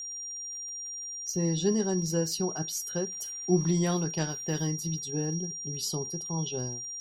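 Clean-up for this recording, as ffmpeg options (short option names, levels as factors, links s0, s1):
-af "adeclick=t=4,bandreject=f=5700:w=30"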